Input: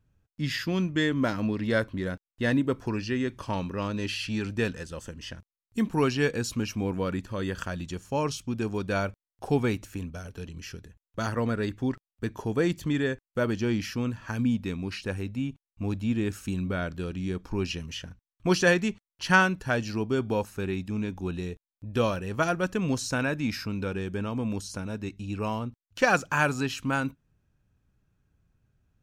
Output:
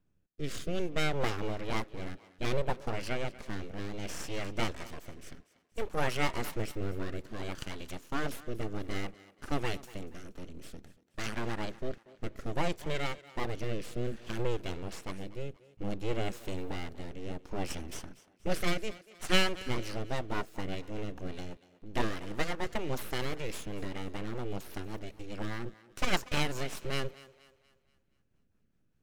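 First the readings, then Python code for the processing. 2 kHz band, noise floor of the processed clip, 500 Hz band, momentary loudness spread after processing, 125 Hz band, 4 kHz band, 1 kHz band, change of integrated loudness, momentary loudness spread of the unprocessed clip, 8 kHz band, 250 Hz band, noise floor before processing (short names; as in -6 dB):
-9.0 dB, -71 dBFS, -7.5 dB, 13 LU, -8.0 dB, -2.0 dB, -6.0 dB, -8.0 dB, 11 LU, -5.0 dB, -11.0 dB, under -85 dBFS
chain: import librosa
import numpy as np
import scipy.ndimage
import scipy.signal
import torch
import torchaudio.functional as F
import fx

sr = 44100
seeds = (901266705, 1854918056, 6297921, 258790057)

y = np.abs(x)
y = fx.rotary_switch(y, sr, hz=0.6, then_hz=5.0, switch_at_s=19.3)
y = fx.echo_thinned(y, sr, ms=238, feedback_pct=43, hz=230.0, wet_db=-18.0)
y = y * librosa.db_to_amplitude(-1.5)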